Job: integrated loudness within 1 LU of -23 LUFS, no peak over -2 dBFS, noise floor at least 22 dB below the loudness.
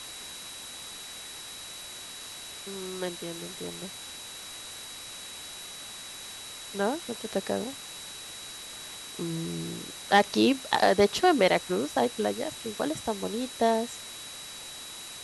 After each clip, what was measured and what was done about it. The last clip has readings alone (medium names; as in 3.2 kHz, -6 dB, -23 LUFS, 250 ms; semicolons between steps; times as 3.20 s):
steady tone 3.9 kHz; tone level -44 dBFS; noise floor -43 dBFS; noise floor target -53 dBFS; loudness -30.5 LUFS; peak level -8.5 dBFS; loudness target -23.0 LUFS
-> band-stop 3.9 kHz, Q 30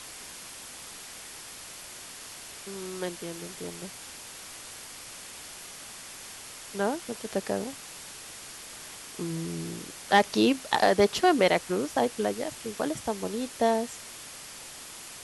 steady tone not found; noise floor -44 dBFS; noise floor target -51 dBFS
-> noise reduction 7 dB, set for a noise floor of -44 dBFS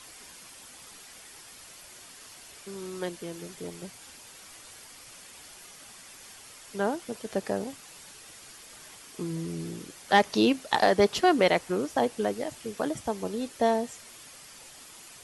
noise floor -49 dBFS; noise floor target -51 dBFS
-> noise reduction 6 dB, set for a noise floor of -49 dBFS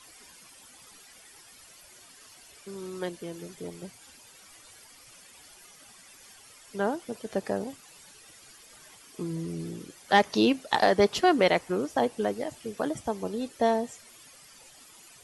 noise floor -53 dBFS; loudness -28.0 LUFS; peak level -9.0 dBFS; loudness target -23.0 LUFS
-> trim +5 dB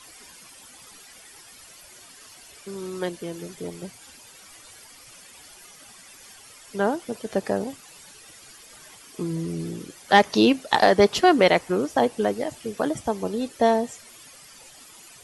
loudness -23.0 LUFS; peak level -4.0 dBFS; noise floor -48 dBFS